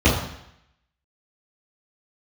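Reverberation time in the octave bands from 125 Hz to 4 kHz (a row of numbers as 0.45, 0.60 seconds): 0.75, 0.75, 0.75, 0.80, 0.85, 0.80 seconds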